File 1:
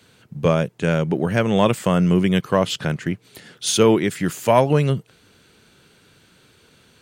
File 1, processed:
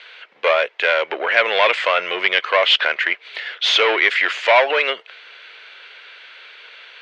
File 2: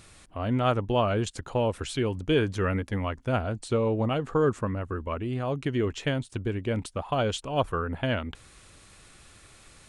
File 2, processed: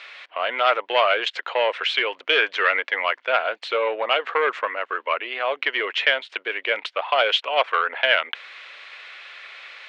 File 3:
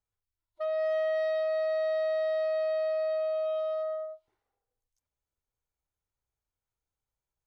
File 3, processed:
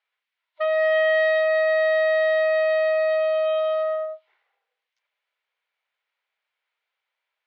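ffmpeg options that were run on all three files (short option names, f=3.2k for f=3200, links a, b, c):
-filter_complex "[0:a]asplit=2[a][b];[b]highpass=f=720:p=1,volume=22dB,asoftclip=type=tanh:threshold=-1.5dB[c];[a][c]amix=inputs=2:normalize=0,lowpass=f=1.8k:p=1,volume=-6dB,highpass=f=500:w=0.5412,highpass=f=500:w=1.3066,equalizer=f=820:t=q:w=4:g=-4,equalizer=f=1.2k:t=q:w=4:g=-3,equalizer=f=2.1k:t=q:w=4:g=4,lowpass=f=3.3k:w=0.5412,lowpass=f=3.3k:w=1.3066,crystalizer=i=9.5:c=0,volume=-5dB"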